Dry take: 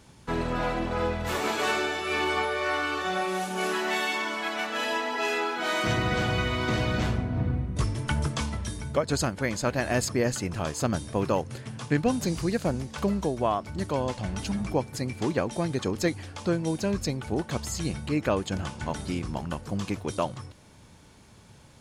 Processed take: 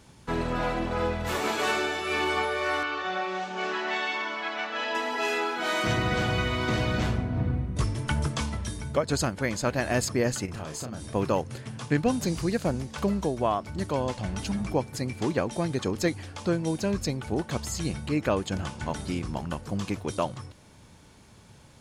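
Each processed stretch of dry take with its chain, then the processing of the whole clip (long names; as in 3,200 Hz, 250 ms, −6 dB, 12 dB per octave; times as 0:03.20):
0:02.83–0:04.95: Bessel low-pass filter 4,000 Hz, order 8 + low-shelf EQ 280 Hz −10 dB
0:10.45–0:11.06: downward compressor 16 to 1, threshold −32 dBFS + double-tracking delay 32 ms −5.5 dB
whole clip: no processing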